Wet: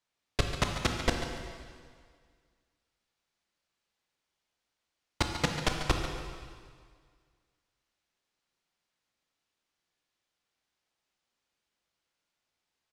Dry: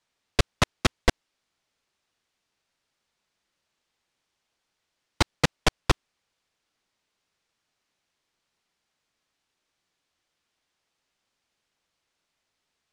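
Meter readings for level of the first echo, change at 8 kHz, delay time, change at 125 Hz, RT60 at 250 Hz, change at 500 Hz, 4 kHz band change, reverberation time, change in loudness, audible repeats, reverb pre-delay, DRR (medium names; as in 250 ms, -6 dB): -10.5 dB, -5.0 dB, 142 ms, -5.0 dB, 1.9 s, -5.0 dB, -5.0 dB, 1.9 s, -6.0 dB, 1, 7 ms, 2.5 dB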